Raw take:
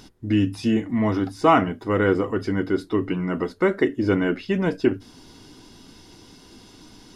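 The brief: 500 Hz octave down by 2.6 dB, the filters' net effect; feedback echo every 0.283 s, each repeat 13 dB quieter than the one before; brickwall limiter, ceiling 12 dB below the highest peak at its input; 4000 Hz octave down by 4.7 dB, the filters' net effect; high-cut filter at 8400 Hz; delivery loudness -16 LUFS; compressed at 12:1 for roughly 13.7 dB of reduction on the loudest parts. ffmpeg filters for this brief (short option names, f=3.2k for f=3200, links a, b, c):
-af "lowpass=8.4k,equalizer=f=500:t=o:g=-3.5,equalizer=f=4k:t=o:g=-7.5,acompressor=threshold=-26dB:ratio=12,alimiter=level_in=4dB:limit=-24dB:level=0:latency=1,volume=-4dB,aecho=1:1:283|566|849:0.224|0.0493|0.0108,volume=21dB"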